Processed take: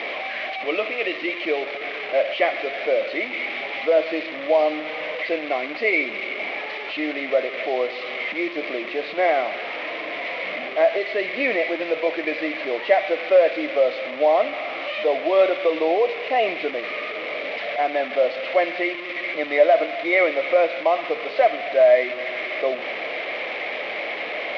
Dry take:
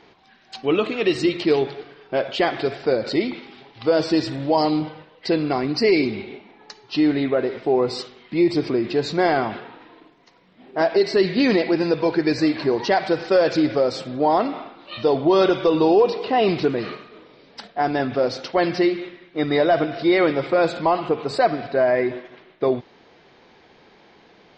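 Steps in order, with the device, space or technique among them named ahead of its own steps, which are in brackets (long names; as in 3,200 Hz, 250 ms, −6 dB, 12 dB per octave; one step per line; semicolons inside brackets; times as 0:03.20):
digital answering machine (band-pass filter 330–3,200 Hz; linear delta modulator 32 kbit/s, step −23 dBFS; loudspeaker in its box 380–3,300 Hz, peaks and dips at 390 Hz −7 dB, 600 Hz +9 dB, 920 Hz −10 dB, 1,500 Hz −8 dB, 2,200 Hz +10 dB)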